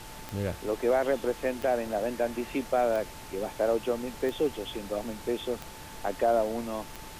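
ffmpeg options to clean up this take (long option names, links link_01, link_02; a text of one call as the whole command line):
ffmpeg -i in.wav -af "adeclick=threshold=4,bandreject=frequency=880:width=30,afftdn=noise_reduction=30:noise_floor=-44" out.wav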